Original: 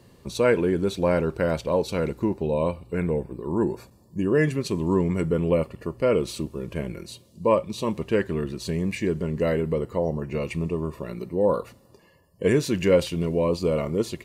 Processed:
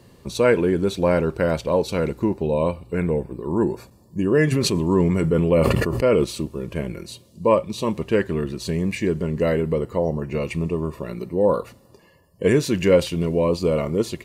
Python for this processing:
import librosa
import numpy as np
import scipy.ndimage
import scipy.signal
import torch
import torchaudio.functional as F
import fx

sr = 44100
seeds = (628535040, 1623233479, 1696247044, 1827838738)

y = fx.sustainer(x, sr, db_per_s=22.0, at=(4.51, 6.23), fade=0.02)
y = F.gain(torch.from_numpy(y), 3.0).numpy()